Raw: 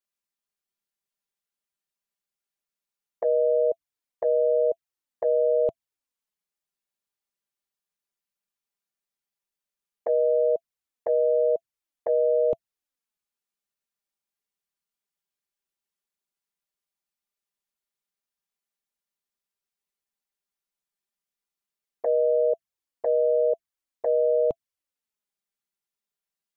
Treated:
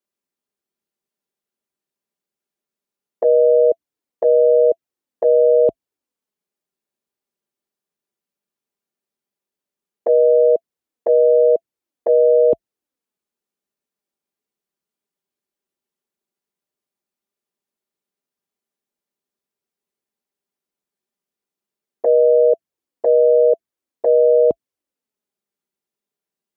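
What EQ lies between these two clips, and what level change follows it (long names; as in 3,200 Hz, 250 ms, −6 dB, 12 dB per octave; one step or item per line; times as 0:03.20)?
high-pass filter 41 Hz 24 dB per octave
parametric band 320 Hz +13 dB 2.2 octaves
0.0 dB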